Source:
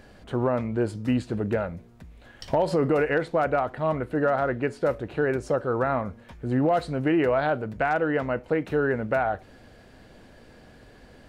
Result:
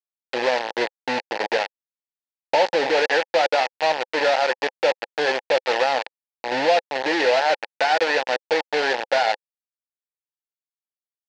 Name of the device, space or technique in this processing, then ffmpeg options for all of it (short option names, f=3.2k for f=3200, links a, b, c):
hand-held game console: -af "acrusher=bits=3:mix=0:aa=0.000001,highpass=430,equalizer=f=520:t=q:w=4:g=7,equalizer=f=840:t=q:w=4:g=10,equalizer=f=1.2k:t=q:w=4:g=-9,equalizer=f=1.8k:t=q:w=4:g=8,equalizer=f=2.6k:t=q:w=4:g=5,equalizer=f=4.4k:t=q:w=4:g=5,lowpass=f=5.3k:w=0.5412,lowpass=f=5.3k:w=1.3066"